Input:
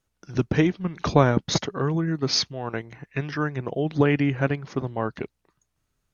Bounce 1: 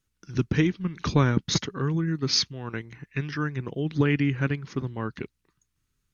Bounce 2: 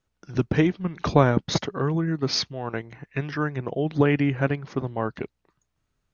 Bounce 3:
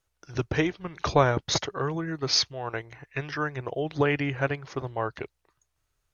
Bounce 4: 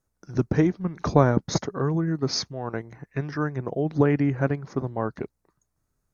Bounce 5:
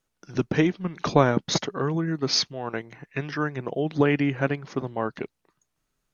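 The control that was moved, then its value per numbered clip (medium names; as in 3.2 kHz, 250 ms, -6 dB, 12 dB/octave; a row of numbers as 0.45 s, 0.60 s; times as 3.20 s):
peaking EQ, frequency: 670 Hz, 14 kHz, 210 Hz, 3 kHz, 74 Hz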